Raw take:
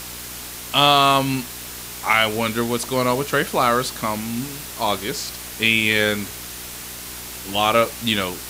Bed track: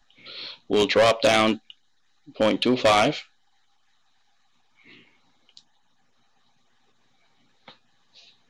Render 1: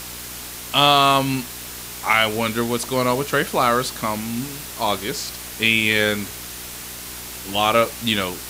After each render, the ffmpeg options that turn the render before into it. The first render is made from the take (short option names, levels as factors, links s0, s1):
-af anull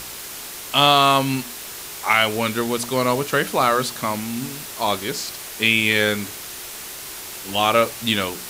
-af "bandreject=f=60:t=h:w=4,bandreject=f=120:t=h:w=4,bandreject=f=180:t=h:w=4,bandreject=f=240:t=h:w=4,bandreject=f=300:t=h:w=4"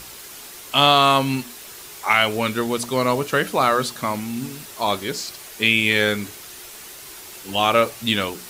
-af "afftdn=nr=6:nf=-35"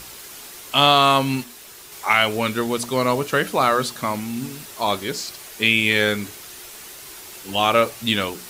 -filter_complex "[0:a]asplit=3[s0][s1][s2];[s0]atrim=end=1.442[s3];[s1]atrim=start=1.438:end=1.922,asetpts=PTS-STARTPTS,volume=0.708[s4];[s2]atrim=start=1.918[s5];[s3][s4]acrossfade=d=0.004:c1=hsin:c2=hsin[s6];[s6][s5]acrossfade=d=0.004:c1=hsin:c2=hsin"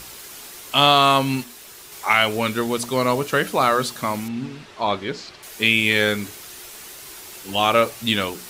-filter_complex "[0:a]asettb=1/sr,asplit=3[s0][s1][s2];[s0]atrim=end=4.284[s3];[s1]atrim=start=4.28:end=5.43,asetpts=PTS-STARTPTS,afade=t=in:d=0.004:c=qsin,afade=t=out:st=1.146:d=0.004:c=qsin,lowpass=3400[s4];[s2]atrim=start=5.426[s5];[s3][s4]acrossfade=d=0.004:c1=hsin:c2=qsin[s6];[s6][s5]acrossfade=d=0.004:c1=qsin:c2=hsin"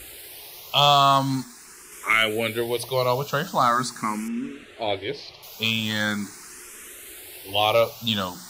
-filter_complex "[0:a]asoftclip=type=hard:threshold=0.422,asplit=2[s0][s1];[s1]afreqshift=0.42[s2];[s0][s2]amix=inputs=2:normalize=1"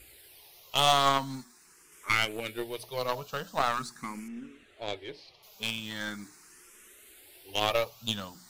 -af "flanger=delay=0.4:depth=6.1:regen=65:speed=0.24:shape=sinusoidal,aeval=exprs='0.376*(cos(1*acos(clip(val(0)/0.376,-1,1)))-cos(1*PI/2))+0.0299*(cos(3*acos(clip(val(0)/0.376,-1,1)))-cos(3*PI/2))+0.0473*(cos(6*acos(clip(val(0)/0.376,-1,1)))-cos(6*PI/2))+0.0211*(cos(7*acos(clip(val(0)/0.376,-1,1)))-cos(7*PI/2))+0.0211*(cos(8*acos(clip(val(0)/0.376,-1,1)))-cos(8*PI/2))':c=same"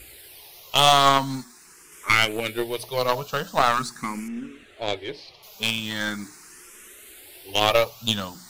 -af "volume=2.66,alimiter=limit=0.708:level=0:latency=1"